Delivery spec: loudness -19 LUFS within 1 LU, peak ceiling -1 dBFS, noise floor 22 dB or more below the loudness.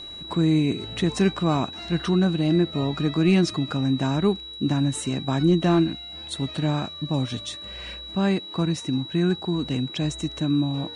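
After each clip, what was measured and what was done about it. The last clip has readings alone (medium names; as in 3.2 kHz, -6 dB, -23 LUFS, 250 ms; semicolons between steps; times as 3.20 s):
steady tone 3.9 kHz; tone level -36 dBFS; loudness -24.0 LUFS; peak level -10.5 dBFS; loudness target -19.0 LUFS
-> band-stop 3.9 kHz, Q 30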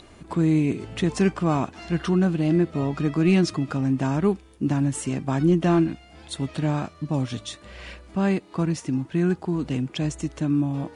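steady tone not found; loudness -24.5 LUFS; peak level -10.5 dBFS; loudness target -19.0 LUFS
-> trim +5.5 dB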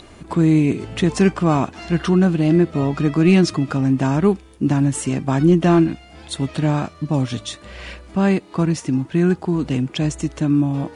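loudness -19.0 LUFS; peak level -5.0 dBFS; noise floor -44 dBFS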